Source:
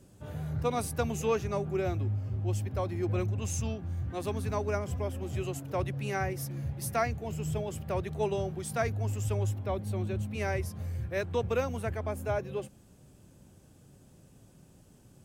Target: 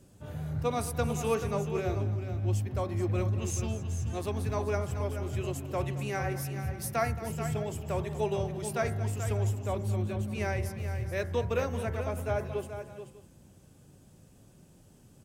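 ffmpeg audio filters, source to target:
ffmpeg -i in.wav -filter_complex "[0:a]bandreject=frequency=63.78:width_type=h:width=4,bandreject=frequency=127.56:width_type=h:width=4,bandreject=frequency=191.34:width_type=h:width=4,bandreject=frequency=255.12:width_type=h:width=4,bandreject=frequency=318.9:width_type=h:width=4,bandreject=frequency=382.68:width_type=h:width=4,bandreject=frequency=446.46:width_type=h:width=4,bandreject=frequency=510.24:width_type=h:width=4,bandreject=frequency=574.02:width_type=h:width=4,bandreject=frequency=637.8:width_type=h:width=4,bandreject=frequency=701.58:width_type=h:width=4,bandreject=frequency=765.36:width_type=h:width=4,bandreject=frequency=829.14:width_type=h:width=4,bandreject=frequency=892.92:width_type=h:width=4,bandreject=frequency=956.7:width_type=h:width=4,bandreject=frequency=1020.48:width_type=h:width=4,bandreject=frequency=1084.26:width_type=h:width=4,bandreject=frequency=1148.04:width_type=h:width=4,bandreject=frequency=1211.82:width_type=h:width=4,bandreject=frequency=1275.6:width_type=h:width=4,bandreject=frequency=1339.38:width_type=h:width=4,bandreject=frequency=1403.16:width_type=h:width=4,bandreject=frequency=1466.94:width_type=h:width=4,bandreject=frequency=1530.72:width_type=h:width=4,bandreject=frequency=1594.5:width_type=h:width=4,bandreject=frequency=1658.28:width_type=h:width=4,bandreject=frequency=1722.06:width_type=h:width=4,bandreject=frequency=1785.84:width_type=h:width=4,bandreject=frequency=1849.62:width_type=h:width=4,bandreject=frequency=1913.4:width_type=h:width=4,bandreject=frequency=1977.18:width_type=h:width=4,bandreject=frequency=2040.96:width_type=h:width=4,bandreject=frequency=2104.74:width_type=h:width=4,bandreject=frequency=2168.52:width_type=h:width=4,asplit=2[link_01][link_02];[link_02]aecho=0:1:221|432|597:0.168|0.335|0.106[link_03];[link_01][link_03]amix=inputs=2:normalize=0" out.wav

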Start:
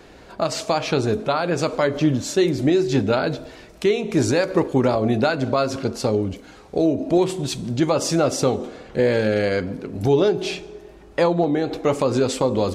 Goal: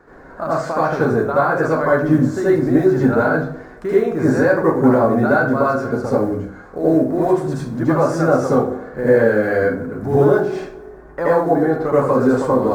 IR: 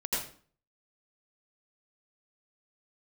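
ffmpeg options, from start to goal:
-filter_complex "[0:a]acrusher=bits=6:mode=log:mix=0:aa=0.000001,highshelf=frequency=2100:width_type=q:width=3:gain=-11.5[link_01];[1:a]atrim=start_sample=2205,asetrate=48510,aresample=44100[link_02];[link_01][link_02]afir=irnorm=-1:irlink=0,volume=-2.5dB"

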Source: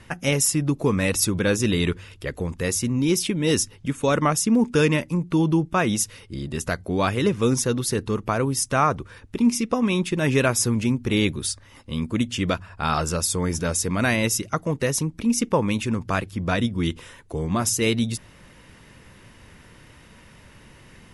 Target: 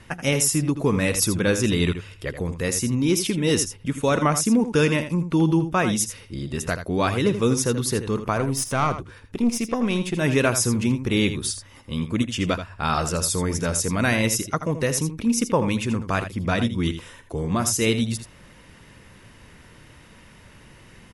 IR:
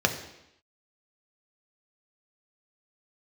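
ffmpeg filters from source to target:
-filter_complex "[0:a]asettb=1/sr,asplit=3[link_01][link_02][link_03];[link_01]atrim=end=8.384[link_04];[link_02]atrim=start=8.38:end=10.17,asetpts=PTS-STARTPTS,afade=type=in:duration=0.004:curve=qsin,afade=type=out:start_time=1.786:duration=0.004:curve=qsin,aeval=exprs='(tanh(3.98*val(0)+0.45)-tanh(0.45))/3.98':channel_layout=same[link_05];[link_03]atrim=start=10.166[link_06];[link_04][link_05]acrossfade=duration=0.004:curve1=hsin:curve2=qsin[link_07];[link_07][link_06]acrossfade=duration=0.004:curve1=qsin:curve2=hsin,aecho=1:1:81:0.299"

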